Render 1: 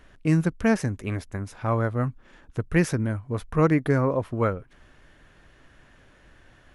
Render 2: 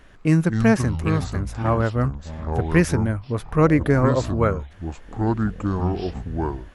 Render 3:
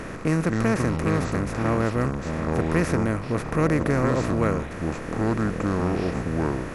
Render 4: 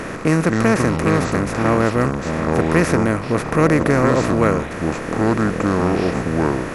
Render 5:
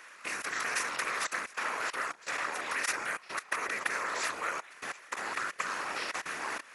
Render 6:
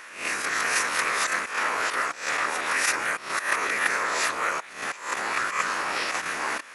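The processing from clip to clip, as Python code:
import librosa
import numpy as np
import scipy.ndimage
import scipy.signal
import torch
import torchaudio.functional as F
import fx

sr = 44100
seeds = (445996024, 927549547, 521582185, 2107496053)

y1 = fx.echo_pitch(x, sr, ms=143, semitones=-6, count=3, db_per_echo=-6.0)
y1 = y1 * librosa.db_to_amplitude(3.5)
y2 = fx.bin_compress(y1, sr, power=0.4)
y2 = y2 * librosa.db_to_amplitude(-8.5)
y3 = fx.low_shelf(y2, sr, hz=120.0, db=-8.0)
y3 = y3 * librosa.db_to_amplitude(8.0)
y4 = fx.level_steps(y3, sr, step_db=22)
y4 = scipy.signal.sosfilt(scipy.signal.butter(2, 1500.0, 'highpass', fs=sr, output='sos'), y4)
y4 = fx.whisperise(y4, sr, seeds[0])
y5 = fx.spec_swells(y4, sr, rise_s=0.46)
y5 = y5 * librosa.db_to_amplitude(6.0)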